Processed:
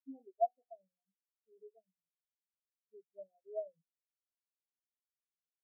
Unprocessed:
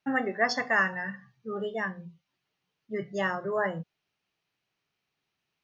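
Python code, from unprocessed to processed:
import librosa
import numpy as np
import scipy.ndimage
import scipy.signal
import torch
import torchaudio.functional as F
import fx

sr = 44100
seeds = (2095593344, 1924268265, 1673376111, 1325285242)

y = scipy.signal.sosfilt(scipy.signal.butter(16, 760.0, 'lowpass', fs=sr, output='sos'), x)
y = fx.low_shelf(y, sr, hz=460.0, db=-8.0)
y = fx.spectral_expand(y, sr, expansion=4.0)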